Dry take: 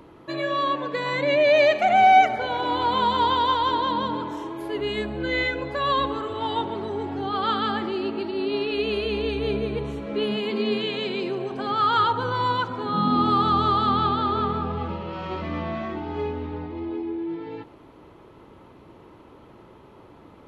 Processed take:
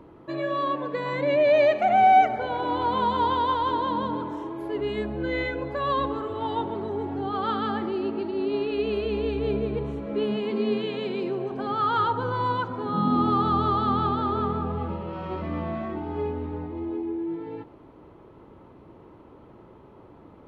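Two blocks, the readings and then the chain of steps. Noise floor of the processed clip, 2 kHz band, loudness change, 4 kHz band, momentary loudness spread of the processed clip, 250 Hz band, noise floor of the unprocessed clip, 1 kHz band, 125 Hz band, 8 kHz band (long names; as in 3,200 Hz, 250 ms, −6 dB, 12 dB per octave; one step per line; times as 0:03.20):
−50 dBFS, −6.0 dB, −2.0 dB, −9.0 dB, 12 LU, 0.0 dB, −49 dBFS, −2.5 dB, 0.0 dB, can't be measured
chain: high-shelf EQ 2,000 Hz −12 dB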